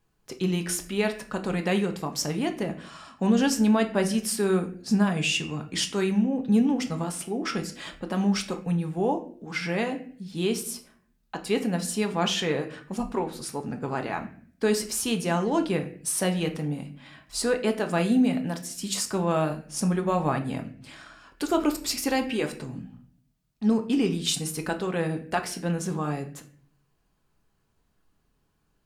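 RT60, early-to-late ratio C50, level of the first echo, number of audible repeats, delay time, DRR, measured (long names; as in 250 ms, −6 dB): 0.50 s, 12.5 dB, no echo audible, no echo audible, no echo audible, 4.5 dB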